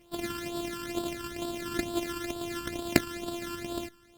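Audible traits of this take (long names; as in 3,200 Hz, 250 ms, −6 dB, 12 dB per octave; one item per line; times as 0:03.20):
a buzz of ramps at a fixed pitch in blocks of 128 samples
phaser sweep stages 12, 2.2 Hz, lowest notch 660–2,100 Hz
Opus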